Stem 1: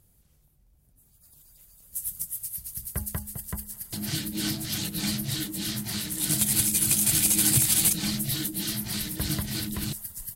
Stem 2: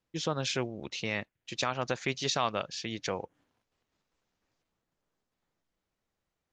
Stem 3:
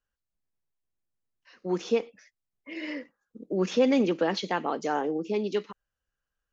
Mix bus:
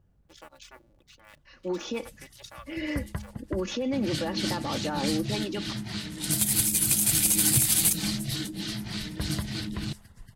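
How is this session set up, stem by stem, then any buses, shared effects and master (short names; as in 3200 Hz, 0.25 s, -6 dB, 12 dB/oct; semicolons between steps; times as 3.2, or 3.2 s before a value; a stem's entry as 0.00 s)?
-0.5 dB, 0.00 s, no bus, no send, low-pass opened by the level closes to 1300 Hz, open at -21.5 dBFS
-15.0 dB, 0.15 s, bus A, no send, cycle switcher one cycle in 2, muted; reverb removal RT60 1.4 s; HPF 340 Hz
0.0 dB, 0.00 s, bus A, no send, limiter -21 dBFS, peak gain reduction 8.5 dB
bus A: 0.0 dB, comb 3.5 ms, depth 69%; limiter -22.5 dBFS, peak gain reduction 6 dB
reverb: off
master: dry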